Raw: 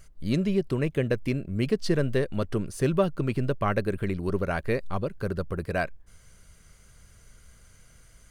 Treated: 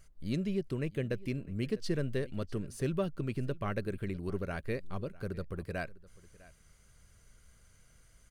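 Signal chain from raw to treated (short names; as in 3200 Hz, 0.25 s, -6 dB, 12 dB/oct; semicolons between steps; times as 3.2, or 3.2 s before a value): dynamic EQ 890 Hz, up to -5 dB, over -43 dBFS, Q 0.98; on a send: echo 0.652 s -21 dB; on the sum: gain -7.5 dB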